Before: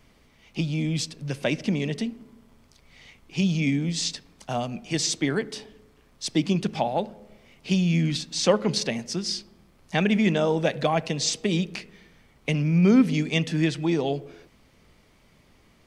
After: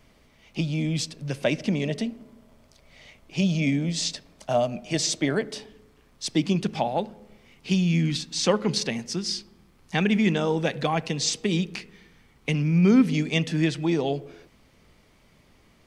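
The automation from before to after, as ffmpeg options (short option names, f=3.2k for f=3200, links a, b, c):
-af "asetnsamples=n=441:p=0,asendcmd='1.83 equalizer g 10.5;5.58 equalizer g -1;7 equalizer g -7;13.15 equalizer g 0.5',equalizer=f=610:t=o:w=0.3:g=4"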